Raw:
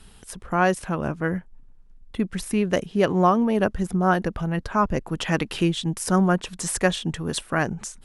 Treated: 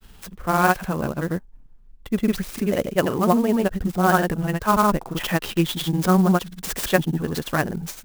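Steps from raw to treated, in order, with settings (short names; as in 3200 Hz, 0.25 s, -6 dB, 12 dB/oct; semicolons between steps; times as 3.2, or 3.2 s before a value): grains, pitch spread up and down by 0 st; clock jitter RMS 0.028 ms; gain +3 dB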